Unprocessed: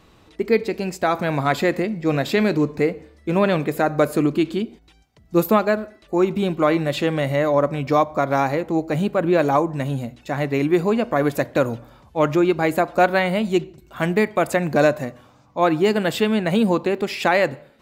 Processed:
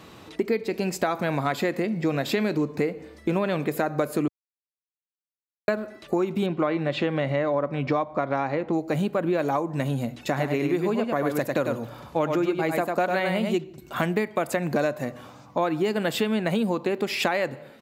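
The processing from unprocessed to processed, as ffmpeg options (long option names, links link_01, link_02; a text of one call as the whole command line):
ffmpeg -i in.wav -filter_complex "[0:a]asettb=1/sr,asplit=3[link_01][link_02][link_03];[link_01]atrim=end=6.464[link_04];[link_02]atrim=start=6.46:end=8.73,asetpts=PTS-STARTPTS,afade=type=in:duration=0.004:curve=qsin,afade=type=out:start_time=2.266:duration=0.004:curve=qsin,lowpass=3600[link_05];[link_03]atrim=start=8.726[link_06];[link_04][link_05]acrossfade=duration=0.004:curve1=hsin:curve2=qsin[link_07];[link_07][link_06]acrossfade=duration=0.004:curve1=qsin:curve2=hsin,asplit=3[link_08][link_09][link_10];[link_08]afade=type=out:start_time=10.36:duration=0.02[link_11];[link_09]aecho=1:1:99:0.562,afade=type=in:start_time=10.36:duration=0.02,afade=type=out:start_time=13.55:duration=0.02[link_12];[link_10]afade=type=in:start_time=13.55:duration=0.02[link_13];[link_11][link_12][link_13]amix=inputs=3:normalize=0,asplit=3[link_14][link_15][link_16];[link_14]atrim=end=4.28,asetpts=PTS-STARTPTS,afade=type=out:start_time=4.276:duration=0.004:curve=hsin[link_17];[link_15]atrim=start=4.28:end=5.68,asetpts=PTS-STARTPTS,volume=0[link_18];[link_16]atrim=start=5.68,asetpts=PTS-STARTPTS,afade=type=in:duration=0.004:curve=hsin[link_19];[link_17][link_18][link_19]concat=n=3:v=0:a=1,highpass=110,equalizer=frequency=12000:width_type=o:width=0.22:gain=3.5,acompressor=threshold=-30dB:ratio=5,volume=7dB" out.wav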